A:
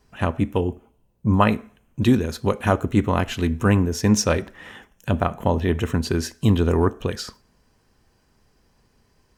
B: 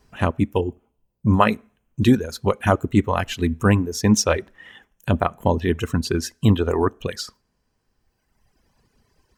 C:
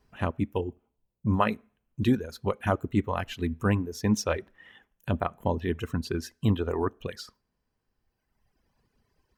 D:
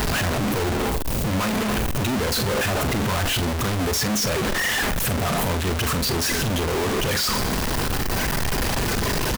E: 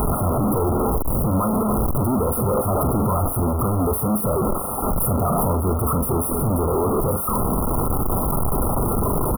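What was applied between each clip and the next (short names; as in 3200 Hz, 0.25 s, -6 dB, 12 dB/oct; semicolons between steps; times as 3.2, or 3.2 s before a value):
reverb removal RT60 1.9 s; gain +2 dB
bell 7400 Hz -6 dB 1.1 oct; gain -8 dB
infinite clipping; doubler 43 ms -10.5 dB; gain +7.5 dB
brick-wall FIR band-stop 1400–9100 Hz; gain +3.5 dB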